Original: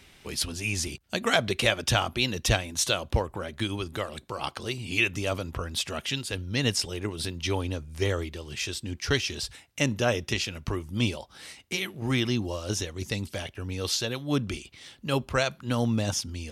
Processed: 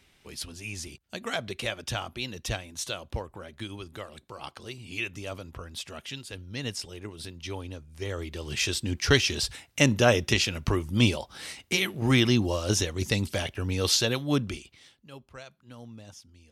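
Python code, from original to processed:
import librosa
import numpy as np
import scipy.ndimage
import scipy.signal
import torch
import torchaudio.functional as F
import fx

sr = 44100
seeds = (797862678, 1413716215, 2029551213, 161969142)

y = fx.gain(x, sr, db=fx.line((8.05, -8.0), (8.48, 4.5), (14.14, 4.5), (14.85, -7.5), (15.1, -19.5)))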